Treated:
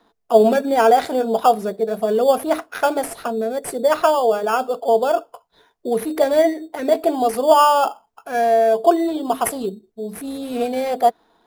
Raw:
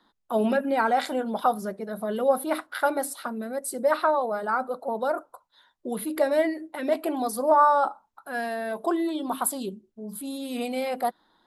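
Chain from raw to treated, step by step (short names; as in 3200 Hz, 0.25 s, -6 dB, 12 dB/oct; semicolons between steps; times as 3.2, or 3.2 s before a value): in parallel at -5 dB: sample-and-hold 11×; on the sum: small resonant body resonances 450/680 Hz, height 13 dB, ringing for 70 ms; gain +1 dB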